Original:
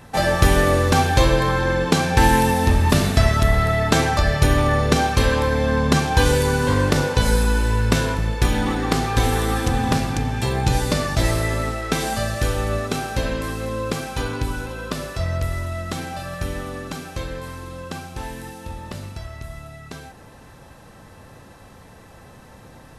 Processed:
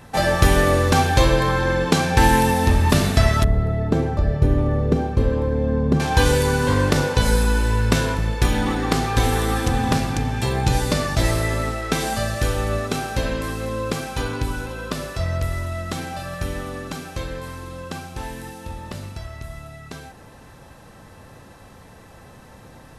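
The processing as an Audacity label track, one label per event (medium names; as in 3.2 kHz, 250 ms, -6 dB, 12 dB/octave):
3.440000	6.000000	FFT filter 450 Hz 0 dB, 700 Hz -8 dB, 1.7 kHz -15 dB, 6.2 kHz -21 dB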